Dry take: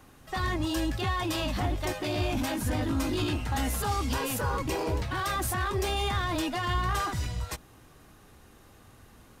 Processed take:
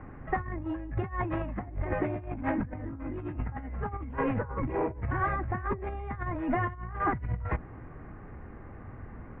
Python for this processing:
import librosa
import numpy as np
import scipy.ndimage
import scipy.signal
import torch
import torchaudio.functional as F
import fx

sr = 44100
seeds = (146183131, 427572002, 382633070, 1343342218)

y = fx.low_shelf(x, sr, hz=320.0, db=7.0)
y = fx.over_compress(y, sr, threshold_db=-30.0, ratio=-0.5)
y = scipy.signal.sosfilt(scipy.signal.ellip(4, 1.0, 60, 2100.0, 'lowpass', fs=sr, output='sos'), y)